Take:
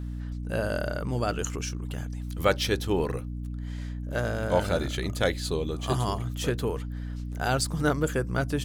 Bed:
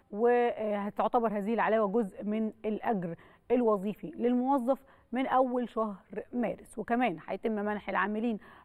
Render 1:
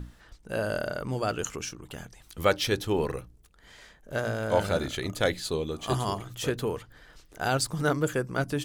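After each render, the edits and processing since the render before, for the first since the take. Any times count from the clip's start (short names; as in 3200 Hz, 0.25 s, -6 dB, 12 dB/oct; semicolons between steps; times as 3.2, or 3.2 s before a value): notches 60/120/180/240/300 Hz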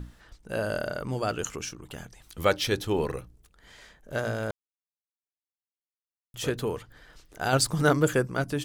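4.51–6.34 mute; 7.53–8.27 gain +4 dB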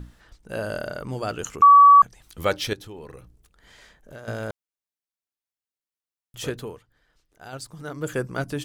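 1.62–2.02 bleep 1140 Hz -7.5 dBFS; 2.73–4.28 compressor 3:1, threshold -41 dBFS; 6.45–8.29 dip -14 dB, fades 0.37 s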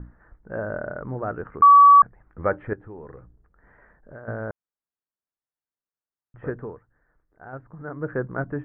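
steep low-pass 1800 Hz 48 dB/oct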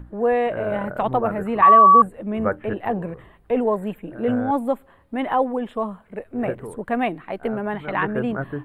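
add bed +6 dB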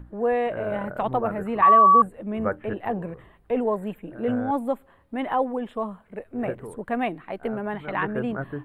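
gain -3.5 dB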